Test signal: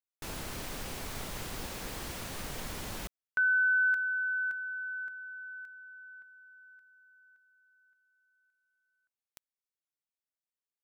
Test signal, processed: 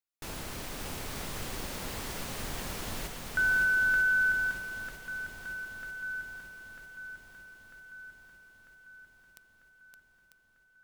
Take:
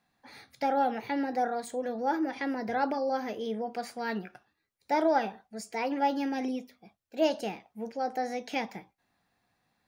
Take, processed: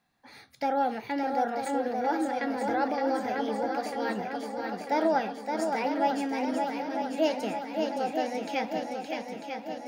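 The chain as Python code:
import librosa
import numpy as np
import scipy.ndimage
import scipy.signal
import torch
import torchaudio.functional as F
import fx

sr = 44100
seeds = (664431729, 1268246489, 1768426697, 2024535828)

y = fx.echo_swing(x, sr, ms=946, ratio=1.5, feedback_pct=58, wet_db=-5)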